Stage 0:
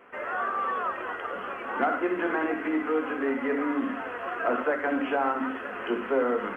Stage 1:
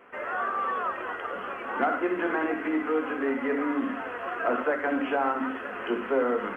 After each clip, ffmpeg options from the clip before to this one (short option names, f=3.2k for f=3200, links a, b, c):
-af anull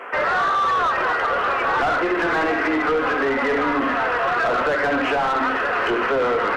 -filter_complex "[0:a]bass=f=250:g=-11,treble=f=4k:g=8,asplit=2[a][b];[b]highpass=f=720:p=1,volume=23dB,asoftclip=type=tanh:threshold=-13.5dB[c];[a][c]amix=inputs=2:normalize=0,lowpass=f=1.5k:p=1,volume=-6dB,alimiter=limit=-20.5dB:level=0:latency=1:release=152,volume=6dB"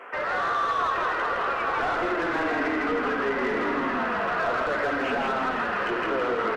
-filter_complex "[0:a]asplit=8[a][b][c][d][e][f][g][h];[b]adelay=163,afreqshift=-31,volume=-3dB[i];[c]adelay=326,afreqshift=-62,volume=-8.8dB[j];[d]adelay=489,afreqshift=-93,volume=-14.7dB[k];[e]adelay=652,afreqshift=-124,volume=-20.5dB[l];[f]adelay=815,afreqshift=-155,volume=-26.4dB[m];[g]adelay=978,afreqshift=-186,volume=-32.2dB[n];[h]adelay=1141,afreqshift=-217,volume=-38.1dB[o];[a][i][j][k][l][m][n][o]amix=inputs=8:normalize=0,volume=-8dB"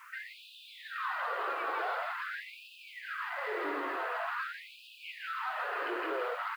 -af "aresample=11025,aresample=44100,acrusher=bits=8:mix=0:aa=0.000001,afftfilt=real='re*gte(b*sr/1024,270*pow(2500/270,0.5+0.5*sin(2*PI*0.46*pts/sr)))':imag='im*gte(b*sr/1024,270*pow(2500/270,0.5+0.5*sin(2*PI*0.46*pts/sr)))':win_size=1024:overlap=0.75,volume=-8dB"